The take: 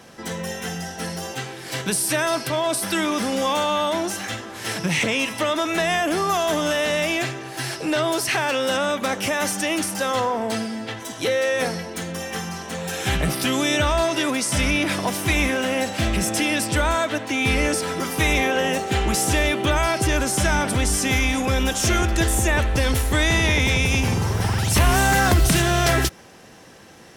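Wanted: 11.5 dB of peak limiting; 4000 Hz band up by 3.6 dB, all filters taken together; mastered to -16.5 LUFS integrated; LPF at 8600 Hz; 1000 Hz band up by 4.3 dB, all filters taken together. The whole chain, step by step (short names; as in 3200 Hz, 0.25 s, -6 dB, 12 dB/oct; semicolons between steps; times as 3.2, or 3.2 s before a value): LPF 8600 Hz; bell 1000 Hz +5.5 dB; bell 4000 Hz +4.5 dB; gain +9 dB; limiter -8 dBFS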